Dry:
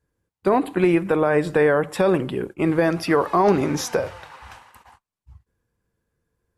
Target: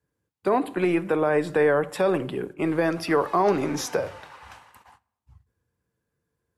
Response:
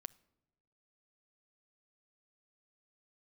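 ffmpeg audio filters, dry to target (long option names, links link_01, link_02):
-filter_complex "[0:a]highpass=73,acrossover=split=250|1500[link_01][link_02][link_03];[link_01]asoftclip=type=tanh:threshold=-30.5dB[link_04];[link_04][link_02][link_03]amix=inputs=3:normalize=0[link_05];[1:a]atrim=start_sample=2205[link_06];[link_05][link_06]afir=irnorm=-1:irlink=0,volume=2dB"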